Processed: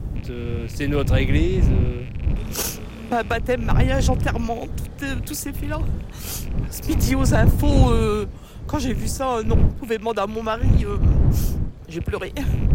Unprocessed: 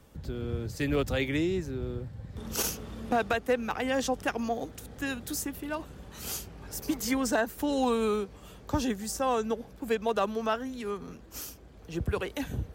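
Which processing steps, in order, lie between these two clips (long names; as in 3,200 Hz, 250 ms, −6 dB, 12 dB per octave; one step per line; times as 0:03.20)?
loose part that buzzes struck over −41 dBFS, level −37 dBFS
wind on the microphone 100 Hz −26 dBFS
0:06.91–0:08.24: multiband upward and downward compressor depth 40%
level +5 dB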